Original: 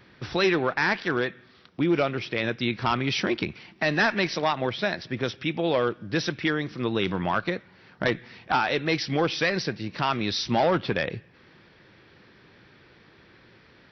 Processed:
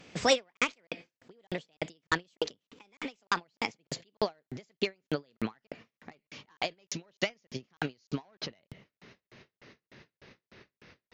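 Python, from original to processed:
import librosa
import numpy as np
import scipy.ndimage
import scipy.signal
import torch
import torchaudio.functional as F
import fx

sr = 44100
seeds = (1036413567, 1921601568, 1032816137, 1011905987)

y = fx.speed_glide(x, sr, from_pct=140, to_pct=110)
y = fx.buffer_crackle(y, sr, first_s=0.57, period_s=0.3, block=2048, kind='zero')
y = fx.end_taper(y, sr, db_per_s=390.0)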